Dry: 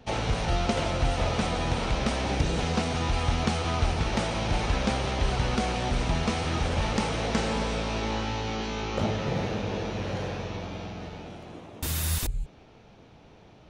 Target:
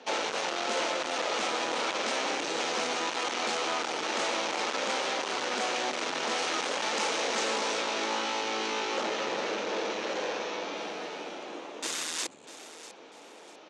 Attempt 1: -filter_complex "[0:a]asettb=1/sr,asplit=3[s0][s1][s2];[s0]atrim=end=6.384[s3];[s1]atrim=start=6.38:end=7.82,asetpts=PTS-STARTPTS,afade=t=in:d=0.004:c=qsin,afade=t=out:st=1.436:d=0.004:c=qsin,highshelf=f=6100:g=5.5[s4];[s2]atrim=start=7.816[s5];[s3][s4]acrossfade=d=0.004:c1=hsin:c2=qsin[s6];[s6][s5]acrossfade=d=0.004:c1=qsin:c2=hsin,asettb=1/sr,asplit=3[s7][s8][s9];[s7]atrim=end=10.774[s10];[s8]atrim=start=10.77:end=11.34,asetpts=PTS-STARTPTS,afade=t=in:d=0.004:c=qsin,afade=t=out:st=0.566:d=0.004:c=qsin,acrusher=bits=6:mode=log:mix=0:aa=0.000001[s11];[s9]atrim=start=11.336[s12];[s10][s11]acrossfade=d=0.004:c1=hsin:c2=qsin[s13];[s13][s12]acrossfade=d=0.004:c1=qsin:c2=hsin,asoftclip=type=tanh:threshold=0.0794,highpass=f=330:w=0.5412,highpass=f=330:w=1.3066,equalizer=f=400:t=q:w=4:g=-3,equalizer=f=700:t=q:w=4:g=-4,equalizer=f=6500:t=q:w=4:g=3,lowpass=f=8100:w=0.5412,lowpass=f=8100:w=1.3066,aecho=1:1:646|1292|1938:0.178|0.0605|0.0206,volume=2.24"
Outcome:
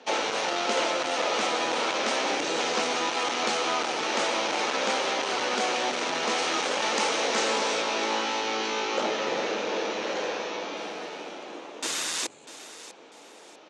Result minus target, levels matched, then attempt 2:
saturation: distortion -7 dB
-filter_complex "[0:a]asettb=1/sr,asplit=3[s0][s1][s2];[s0]atrim=end=6.384[s3];[s1]atrim=start=6.38:end=7.82,asetpts=PTS-STARTPTS,afade=t=in:d=0.004:c=qsin,afade=t=out:st=1.436:d=0.004:c=qsin,highshelf=f=6100:g=5.5[s4];[s2]atrim=start=7.816[s5];[s3][s4]acrossfade=d=0.004:c1=hsin:c2=qsin[s6];[s6][s5]acrossfade=d=0.004:c1=qsin:c2=hsin,asettb=1/sr,asplit=3[s7][s8][s9];[s7]atrim=end=10.774[s10];[s8]atrim=start=10.77:end=11.34,asetpts=PTS-STARTPTS,afade=t=in:d=0.004:c=qsin,afade=t=out:st=0.566:d=0.004:c=qsin,acrusher=bits=6:mode=log:mix=0:aa=0.000001[s11];[s9]atrim=start=11.336[s12];[s10][s11]acrossfade=d=0.004:c1=hsin:c2=qsin[s13];[s13][s12]acrossfade=d=0.004:c1=qsin:c2=hsin,asoftclip=type=tanh:threshold=0.0299,highpass=f=330:w=0.5412,highpass=f=330:w=1.3066,equalizer=f=400:t=q:w=4:g=-3,equalizer=f=700:t=q:w=4:g=-4,equalizer=f=6500:t=q:w=4:g=3,lowpass=f=8100:w=0.5412,lowpass=f=8100:w=1.3066,aecho=1:1:646|1292|1938:0.178|0.0605|0.0206,volume=2.24"

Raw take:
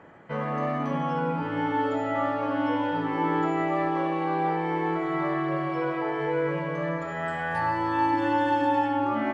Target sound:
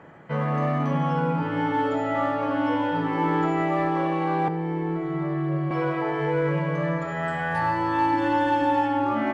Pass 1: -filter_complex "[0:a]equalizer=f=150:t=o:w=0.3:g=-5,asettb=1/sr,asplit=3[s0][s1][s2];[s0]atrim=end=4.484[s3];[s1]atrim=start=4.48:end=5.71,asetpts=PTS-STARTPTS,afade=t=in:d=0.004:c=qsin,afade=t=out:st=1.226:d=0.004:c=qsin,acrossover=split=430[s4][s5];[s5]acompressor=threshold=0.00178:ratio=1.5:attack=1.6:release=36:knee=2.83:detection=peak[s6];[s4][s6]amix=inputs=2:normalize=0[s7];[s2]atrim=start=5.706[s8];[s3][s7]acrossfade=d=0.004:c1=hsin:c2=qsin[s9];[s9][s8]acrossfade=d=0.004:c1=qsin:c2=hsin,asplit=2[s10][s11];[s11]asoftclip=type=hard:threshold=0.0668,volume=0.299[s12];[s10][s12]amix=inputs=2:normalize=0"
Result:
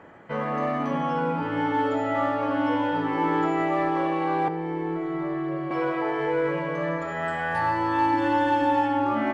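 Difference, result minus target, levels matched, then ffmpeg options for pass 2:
125 Hz band -7.0 dB
-filter_complex "[0:a]equalizer=f=150:t=o:w=0.3:g=7,asettb=1/sr,asplit=3[s0][s1][s2];[s0]atrim=end=4.484[s3];[s1]atrim=start=4.48:end=5.71,asetpts=PTS-STARTPTS,afade=t=in:d=0.004:c=qsin,afade=t=out:st=1.226:d=0.004:c=qsin,acrossover=split=430[s4][s5];[s5]acompressor=threshold=0.00178:ratio=1.5:attack=1.6:release=36:knee=2.83:detection=peak[s6];[s4][s6]amix=inputs=2:normalize=0[s7];[s2]atrim=start=5.706[s8];[s3][s7]acrossfade=d=0.004:c1=hsin:c2=qsin[s9];[s9][s8]acrossfade=d=0.004:c1=qsin:c2=hsin,asplit=2[s10][s11];[s11]asoftclip=type=hard:threshold=0.0668,volume=0.299[s12];[s10][s12]amix=inputs=2:normalize=0"

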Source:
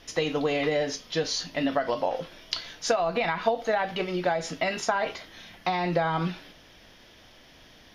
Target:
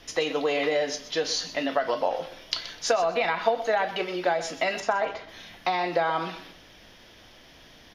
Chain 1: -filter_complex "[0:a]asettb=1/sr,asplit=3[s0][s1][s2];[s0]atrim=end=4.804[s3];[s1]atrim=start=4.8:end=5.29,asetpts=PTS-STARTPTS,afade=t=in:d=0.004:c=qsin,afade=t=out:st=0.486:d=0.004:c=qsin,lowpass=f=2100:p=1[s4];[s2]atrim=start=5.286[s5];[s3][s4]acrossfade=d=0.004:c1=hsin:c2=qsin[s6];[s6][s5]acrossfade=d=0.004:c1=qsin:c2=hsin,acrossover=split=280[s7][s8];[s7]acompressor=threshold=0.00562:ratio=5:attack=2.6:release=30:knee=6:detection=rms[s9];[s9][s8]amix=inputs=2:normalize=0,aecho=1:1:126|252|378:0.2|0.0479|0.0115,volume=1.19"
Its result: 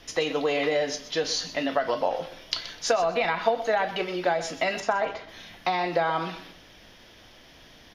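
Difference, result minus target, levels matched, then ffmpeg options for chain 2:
compression: peak gain reduction -5 dB
-filter_complex "[0:a]asettb=1/sr,asplit=3[s0][s1][s2];[s0]atrim=end=4.804[s3];[s1]atrim=start=4.8:end=5.29,asetpts=PTS-STARTPTS,afade=t=in:d=0.004:c=qsin,afade=t=out:st=0.486:d=0.004:c=qsin,lowpass=f=2100:p=1[s4];[s2]atrim=start=5.286[s5];[s3][s4]acrossfade=d=0.004:c1=hsin:c2=qsin[s6];[s6][s5]acrossfade=d=0.004:c1=qsin:c2=hsin,acrossover=split=280[s7][s8];[s7]acompressor=threshold=0.00266:ratio=5:attack=2.6:release=30:knee=6:detection=rms[s9];[s9][s8]amix=inputs=2:normalize=0,aecho=1:1:126|252|378:0.2|0.0479|0.0115,volume=1.19"

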